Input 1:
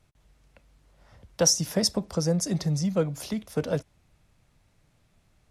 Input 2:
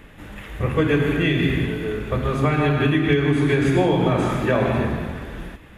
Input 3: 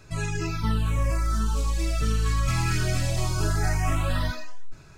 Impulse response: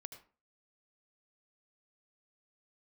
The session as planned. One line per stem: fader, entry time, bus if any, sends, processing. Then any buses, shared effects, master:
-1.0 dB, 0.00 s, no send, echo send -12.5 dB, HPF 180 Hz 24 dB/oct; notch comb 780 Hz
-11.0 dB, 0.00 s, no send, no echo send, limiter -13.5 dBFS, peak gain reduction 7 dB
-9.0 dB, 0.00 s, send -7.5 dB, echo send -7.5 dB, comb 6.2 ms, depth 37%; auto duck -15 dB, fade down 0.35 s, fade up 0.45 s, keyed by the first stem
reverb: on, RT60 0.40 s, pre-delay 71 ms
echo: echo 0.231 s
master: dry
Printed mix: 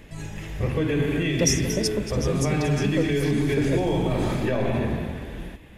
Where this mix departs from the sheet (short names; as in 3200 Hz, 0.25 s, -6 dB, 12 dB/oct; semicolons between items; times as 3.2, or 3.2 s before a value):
stem 2 -11.0 dB -> -1.5 dB; master: extra bell 1300 Hz -9 dB 0.64 oct